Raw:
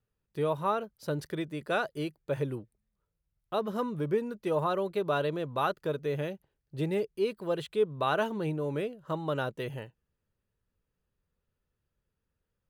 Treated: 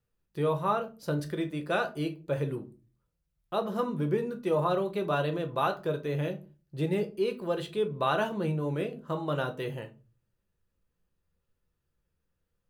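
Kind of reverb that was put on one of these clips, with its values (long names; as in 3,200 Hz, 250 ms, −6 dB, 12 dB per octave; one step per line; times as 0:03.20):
rectangular room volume 140 cubic metres, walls furnished, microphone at 0.8 metres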